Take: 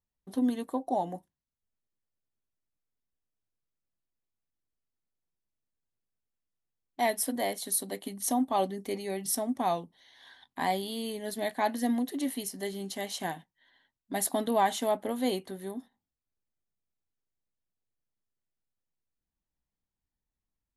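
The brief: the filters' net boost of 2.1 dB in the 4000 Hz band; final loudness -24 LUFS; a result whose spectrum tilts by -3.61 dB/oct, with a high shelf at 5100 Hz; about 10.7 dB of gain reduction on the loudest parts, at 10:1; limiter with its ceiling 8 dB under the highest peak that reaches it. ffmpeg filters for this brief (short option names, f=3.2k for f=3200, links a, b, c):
-af "equalizer=f=4k:t=o:g=5.5,highshelf=f=5.1k:g=-7,acompressor=threshold=-33dB:ratio=10,volume=16dB,alimiter=limit=-13dB:level=0:latency=1"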